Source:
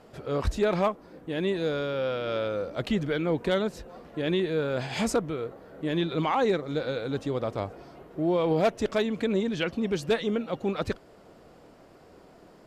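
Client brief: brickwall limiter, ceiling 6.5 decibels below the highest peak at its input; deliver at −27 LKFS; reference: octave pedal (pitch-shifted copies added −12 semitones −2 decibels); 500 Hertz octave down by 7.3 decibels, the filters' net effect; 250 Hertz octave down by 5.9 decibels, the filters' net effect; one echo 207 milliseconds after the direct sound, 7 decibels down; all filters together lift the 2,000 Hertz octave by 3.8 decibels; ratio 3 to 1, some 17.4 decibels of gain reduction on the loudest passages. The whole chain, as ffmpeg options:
ffmpeg -i in.wav -filter_complex "[0:a]equalizer=frequency=250:width_type=o:gain=-6,equalizer=frequency=500:width_type=o:gain=-7.5,equalizer=frequency=2000:width_type=o:gain=5.5,acompressor=threshold=-46dB:ratio=3,alimiter=level_in=11.5dB:limit=-24dB:level=0:latency=1,volume=-11.5dB,aecho=1:1:207:0.447,asplit=2[link_01][link_02];[link_02]asetrate=22050,aresample=44100,atempo=2,volume=-2dB[link_03];[link_01][link_03]amix=inputs=2:normalize=0,volume=17.5dB" out.wav

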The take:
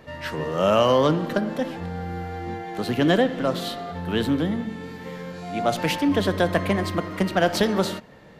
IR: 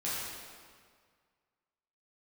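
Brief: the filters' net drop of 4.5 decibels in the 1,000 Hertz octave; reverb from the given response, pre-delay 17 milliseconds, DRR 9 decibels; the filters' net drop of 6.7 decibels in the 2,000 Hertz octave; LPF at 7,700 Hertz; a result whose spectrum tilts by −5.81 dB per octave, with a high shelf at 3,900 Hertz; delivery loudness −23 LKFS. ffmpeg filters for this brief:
-filter_complex "[0:a]lowpass=7700,equalizer=frequency=1000:width_type=o:gain=-5,equalizer=frequency=2000:width_type=o:gain=-6,highshelf=frequency=3900:gain=-3.5,asplit=2[link_01][link_02];[1:a]atrim=start_sample=2205,adelay=17[link_03];[link_02][link_03]afir=irnorm=-1:irlink=0,volume=-14.5dB[link_04];[link_01][link_04]amix=inputs=2:normalize=0,volume=2dB"

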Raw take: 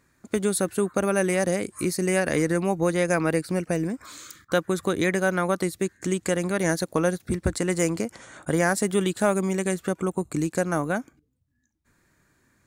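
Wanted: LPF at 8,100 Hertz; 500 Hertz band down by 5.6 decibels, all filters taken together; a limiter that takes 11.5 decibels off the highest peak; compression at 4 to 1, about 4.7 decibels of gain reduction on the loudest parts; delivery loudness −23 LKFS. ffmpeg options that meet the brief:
ffmpeg -i in.wav -af "lowpass=8100,equalizer=frequency=500:width_type=o:gain=-7.5,acompressor=threshold=-28dB:ratio=4,volume=14dB,alimiter=limit=-13dB:level=0:latency=1" out.wav

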